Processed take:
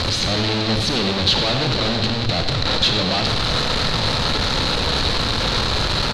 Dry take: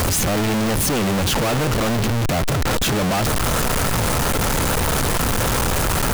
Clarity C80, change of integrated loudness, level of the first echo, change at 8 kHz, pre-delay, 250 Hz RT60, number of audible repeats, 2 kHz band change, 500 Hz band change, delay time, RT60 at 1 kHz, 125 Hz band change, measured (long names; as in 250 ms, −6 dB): 6.5 dB, +1.0 dB, −11.0 dB, −9.5 dB, 26 ms, 1.4 s, 1, 0.0 dB, −1.5 dB, 94 ms, 1.3 s, −2.0 dB